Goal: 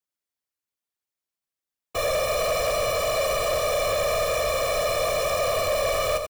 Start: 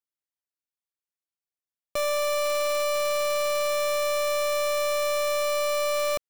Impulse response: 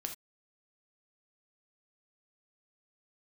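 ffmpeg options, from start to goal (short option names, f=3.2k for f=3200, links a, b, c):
-af "afftfilt=real='hypot(re,im)*cos(2*PI*random(0))':imag='hypot(re,im)*sin(2*PI*random(1))':win_size=512:overlap=0.75,aecho=1:1:86:0.376,aeval=exprs='0.158*(cos(1*acos(clip(val(0)/0.158,-1,1)))-cos(1*PI/2))+0.0562*(cos(5*acos(clip(val(0)/0.158,-1,1)))-cos(5*PI/2))':c=same"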